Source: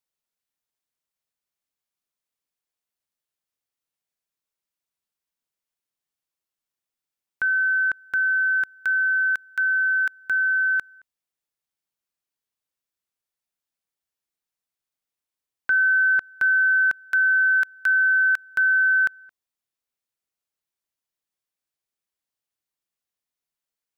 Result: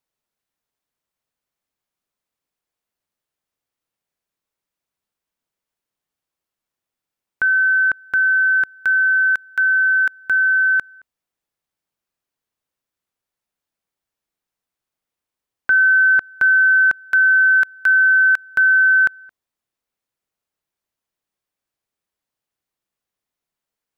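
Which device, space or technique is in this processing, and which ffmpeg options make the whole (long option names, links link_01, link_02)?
behind a face mask: -af "highshelf=frequency=2200:gain=-7.5,volume=8dB"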